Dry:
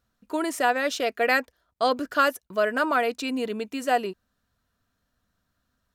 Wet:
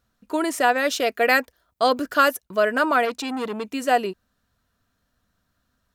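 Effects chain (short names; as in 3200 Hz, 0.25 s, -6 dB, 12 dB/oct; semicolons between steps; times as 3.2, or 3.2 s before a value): 0.78–2.41 high shelf 11000 Hz +7.5 dB; 3.05–3.64 core saturation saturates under 1100 Hz; gain +3.5 dB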